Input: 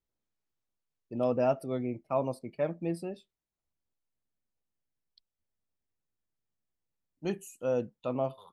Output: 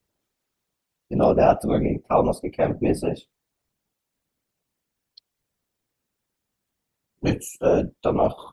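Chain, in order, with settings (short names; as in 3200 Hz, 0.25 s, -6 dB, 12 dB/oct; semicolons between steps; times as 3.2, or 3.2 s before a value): HPF 47 Hz; in parallel at -2 dB: limiter -25 dBFS, peak gain reduction 9.5 dB; on the sum: whisperiser; gain +7.5 dB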